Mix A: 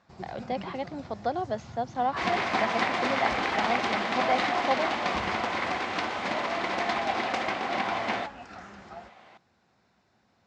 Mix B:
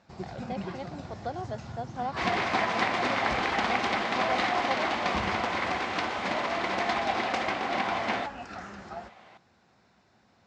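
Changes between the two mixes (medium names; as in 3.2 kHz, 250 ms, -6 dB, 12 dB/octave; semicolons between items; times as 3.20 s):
speech -6.0 dB; first sound +4.0 dB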